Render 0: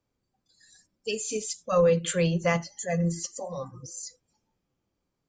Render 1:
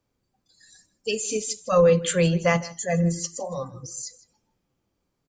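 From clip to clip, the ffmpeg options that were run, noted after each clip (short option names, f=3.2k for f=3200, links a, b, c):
-af "aecho=1:1:158:0.106,volume=4dB"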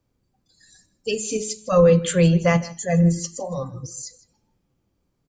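-af "lowshelf=f=320:g=7.5,bandreject=f=214.2:t=h:w=4,bandreject=f=428.4:t=h:w=4,bandreject=f=642.6:t=h:w=4,bandreject=f=856.8:t=h:w=4,bandreject=f=1.071k:t=h:w=4,bandreject=f=1.2852k:t=h:w=4,bandreject=f=1.4994k:t=h:w=4,bandreject=f=1.7136k:t=h:w=4,bandreject=f=1.9278k:t=h:w=4,bandreject=f=2.142k:t=h:w=4,bandreject=f=2.3562k:t=h:w=4,bandreject=f=2.5704k:t=h:w=4,bandreject=f=2.7846k:t=h:w=4,bandreject=f=2.9988k:t=h:w=4,bandreject=f=3.213k:t=h:w=4,bandreject=f=3.4272k:t=h:w=4,bandreject=f=3.6414k:t=h:w=4,bandreject=f=3.8556k:t=h:w=4,bandreject=f=4.0698k:t=h:w=4,bandreject=f=4.284k:t=h:w=4,bandreject=f=4.4982k:t=h:w=4"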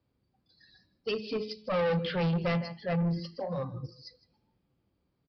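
-af "highpass=51,aresample=11025,asoftclip=type=tanh:threshold=-21.5dB,aresample=44100,volume=-4dB"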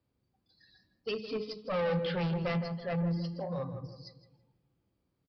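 -filter_complex "[0:a]asplit=2[a][b];[b]adelay=164,lowpass=f=1.3k:p=1,volume=-9dB,asplit=2[c][d];[d]adelay=164,lowpass=f=1.3k:p=1,volume=0.44,asplit=2[e][f];[f]adelay=164,lowpass=f=1.3k:p=1,volume=0.44,asplit=2[g][h];[h]adelay=164,lowpass=f=1.3k:p=1,volume=0.44,asplit=2[i][j];[j]adelay=164,lowpass=f=1.3k:p=1,volume=0.44[k];[a][c][e][g][i][k]amix=inputs=6:normalize=0,volume=-3dB"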